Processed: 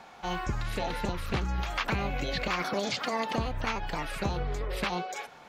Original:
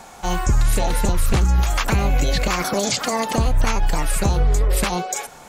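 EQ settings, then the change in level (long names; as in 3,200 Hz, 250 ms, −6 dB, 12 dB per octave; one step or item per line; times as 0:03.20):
high-frequency loss of the air 320 metres
spectral tilt +4.5 dB per octave
low-shelf EQ 410 Hz +11 dB
−8.0 dB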